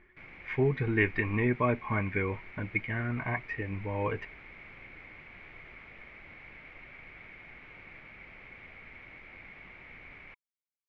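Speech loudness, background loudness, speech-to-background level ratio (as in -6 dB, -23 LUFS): -31.0 LUFS, -48.5 LUFS, 17.5 dB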